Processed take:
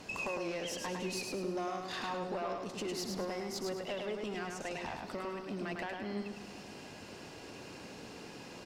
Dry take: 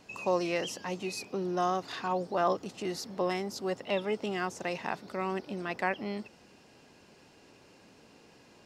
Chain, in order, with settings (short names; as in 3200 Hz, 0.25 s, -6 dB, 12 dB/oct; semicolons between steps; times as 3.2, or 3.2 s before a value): compressor 4:1, threshold -44 dBFS, peak gain reduction 18 dB; tube stage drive 40 dB, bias 0.3; feedback echo 0.104 s, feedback 34%, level -4 dB; reverb RT60 3.6 s, pre-delay 0.106 s, DRR 15 dB; gain +8.5 dB